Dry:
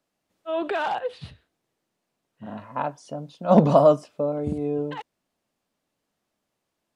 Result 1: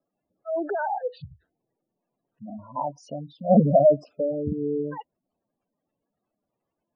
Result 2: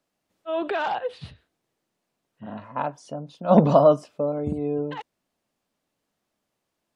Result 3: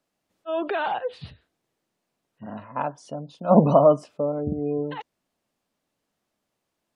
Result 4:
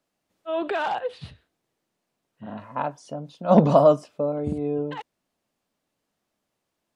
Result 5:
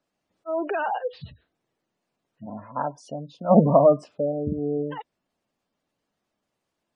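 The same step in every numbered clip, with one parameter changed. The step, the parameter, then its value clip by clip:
gate on every frequency bin, under each frame's peak: −10, −50, −35, −60, −20 decibels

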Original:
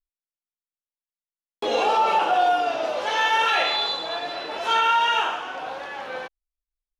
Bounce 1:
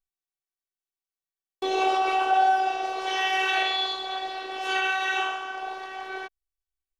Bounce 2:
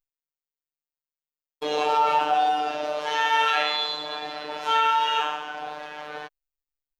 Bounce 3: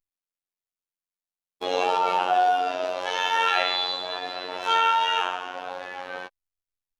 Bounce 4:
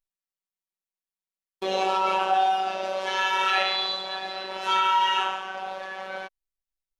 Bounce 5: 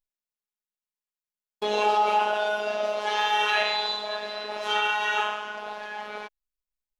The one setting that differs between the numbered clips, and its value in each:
phases set to zero, frequency: 380, 150, 91, 190, 210 Hertz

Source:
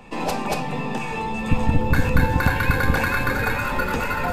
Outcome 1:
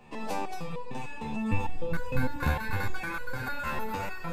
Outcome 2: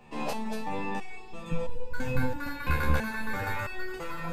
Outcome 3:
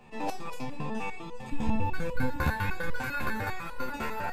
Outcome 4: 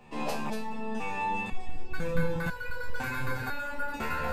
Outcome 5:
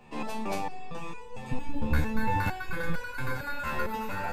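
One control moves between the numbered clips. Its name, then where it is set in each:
step-sequenced resonator, speed: 6.6, 3, 10, 2, 4.4 Hertz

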